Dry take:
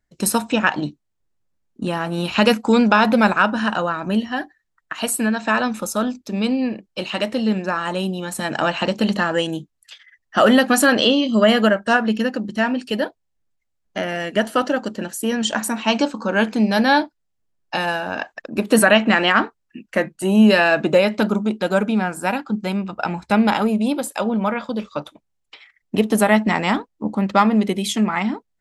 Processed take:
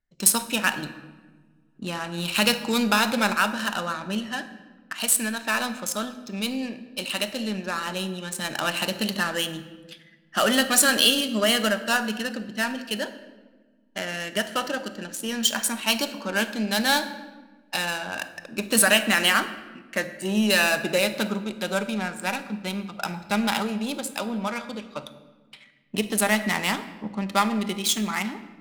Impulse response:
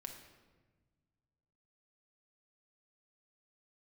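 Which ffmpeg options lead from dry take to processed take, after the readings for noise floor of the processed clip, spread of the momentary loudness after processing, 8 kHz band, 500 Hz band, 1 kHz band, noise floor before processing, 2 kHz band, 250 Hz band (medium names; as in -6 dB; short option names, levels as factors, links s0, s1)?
-58 dBFS, 14 LU, +3.5 dB, -9.0 dB, -7.0 dB, -73 dBFS, -4.0 dB, -9.5 dB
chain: -filter_complex "[0:a]adynamicsmooth=sensitivity=4:basefreq=2500,crystalizer=i=8:c=0,asplit=2[s0][s1];[1:a]atrim=start_sample=2205,lowshelf=f=170:g=7[s2];[s1][s2]afir=irnorm=-1:irlink=0,volume=1.68[s3];[s0][s3]amix=inputs=2:normalize=0,volume=0.141"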